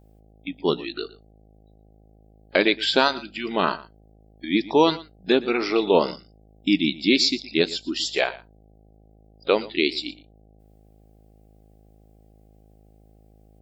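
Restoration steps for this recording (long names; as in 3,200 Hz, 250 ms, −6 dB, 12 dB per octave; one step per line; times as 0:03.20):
hum removal 53 Hz, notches 15
echo removal 117 ms −19 dB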